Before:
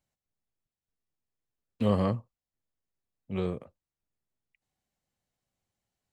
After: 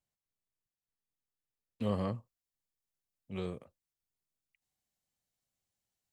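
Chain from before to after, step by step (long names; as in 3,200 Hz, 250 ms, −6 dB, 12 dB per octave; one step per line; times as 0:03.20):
high-shelf EQ 3,200 Hz +2.5 dB, from 0:02.15 +9.5 dB
level −7.5 dB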